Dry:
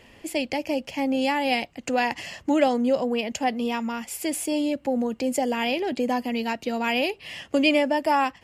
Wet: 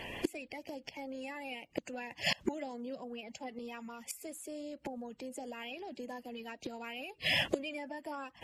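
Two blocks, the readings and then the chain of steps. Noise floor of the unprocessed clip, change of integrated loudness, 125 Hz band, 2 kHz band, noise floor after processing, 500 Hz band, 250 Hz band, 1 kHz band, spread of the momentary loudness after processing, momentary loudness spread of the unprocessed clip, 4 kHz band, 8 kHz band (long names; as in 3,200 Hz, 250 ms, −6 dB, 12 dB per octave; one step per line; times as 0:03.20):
−55 dBFS, −14.5 dB, can't be measured, −10.5 dB, −67 dBFS, −16.5 dB, −17.5 dB, −19.0 dB, 12 LU, 7 LU, −7.5 dB, −13.0 dB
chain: spectral magnitudes quantised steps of 30 dB
downward compressor 2 to 1, threshold −26 dBFS, peak gain reduction 6.5 dB
gate with flip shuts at −26 dBFS, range −24 dB
level +8.5 dB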